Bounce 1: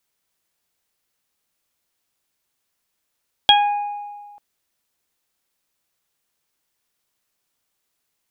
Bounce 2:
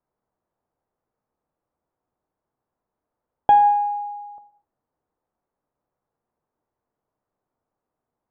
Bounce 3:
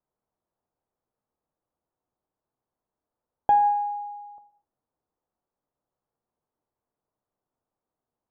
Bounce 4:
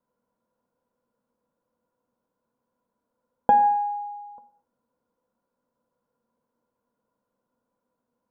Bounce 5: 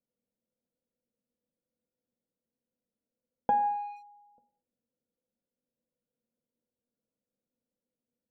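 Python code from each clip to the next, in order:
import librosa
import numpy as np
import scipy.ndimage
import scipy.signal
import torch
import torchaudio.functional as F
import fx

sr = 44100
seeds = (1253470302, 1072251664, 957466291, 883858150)

y1 = fx.ladder_lowpass(x, sr, hz=1200.0, resonance_pct=20)
y1 = fx.rev_gated(y1, sr, seeds[0], gate_ms=280, shape='falling', drr_db=10.0)
y1 = y1 * librosa.db_to_amplitude(8.0)
y2 = scipy.signal.sosfilt(scipy.signal.butter(2, 2000.0, 'lowpass', fs=sr, output='sos'), y1)
y2 = y2 * librosa.db_to_amplitude(-5.0)
y3 = fx.small_body(y2, sr, hz=(230.0, 500.0, 990.0, 1400.0), ring_ms=45, db=16)
y4 = fx.wiener(y3, sr, points=41)
y4 = fx.hum_notches(y4, sr, base_hz=60, count=2)
y4 = y4 * librosa.db_to_amplitude(-8.5)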